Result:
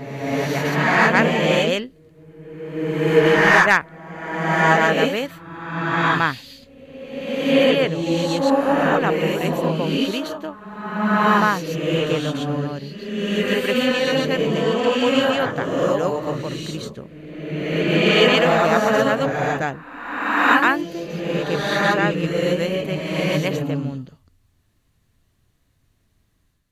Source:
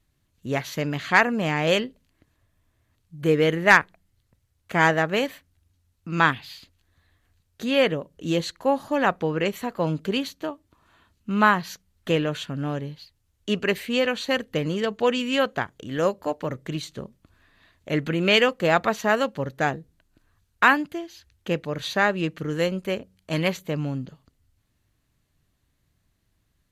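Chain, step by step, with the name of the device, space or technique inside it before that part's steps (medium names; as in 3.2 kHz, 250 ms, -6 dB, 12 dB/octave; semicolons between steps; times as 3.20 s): reverse reverb (reverse; reverberation RT60 1.6 s, pre-delay 108 ms, DRR -4.5 dB; reverse); trim -1 dB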